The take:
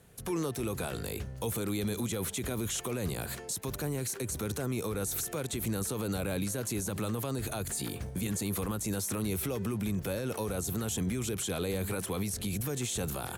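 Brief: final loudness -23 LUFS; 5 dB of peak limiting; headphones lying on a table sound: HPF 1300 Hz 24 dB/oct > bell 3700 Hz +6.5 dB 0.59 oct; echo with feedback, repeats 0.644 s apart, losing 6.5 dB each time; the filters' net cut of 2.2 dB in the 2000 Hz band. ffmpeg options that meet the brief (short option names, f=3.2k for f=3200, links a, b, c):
-af "equalizer=f=2k:t=o:g=-3.5,alimiter=level_in=4.5dB:limit=-24dB:level=0:latency=1,volume=-4.5dB,highpass=f=1.3k:w=0.5412,highpass=f=1.3k:w=1.3066,equalizer=f=3.7k:t=o:w=0.59:g=6.5,aecho=1:1:644|1288|1932|2576|3220|3864:0.473|0.222|0.105|0.0491|0.0231|0.0109,volume=16.5dB"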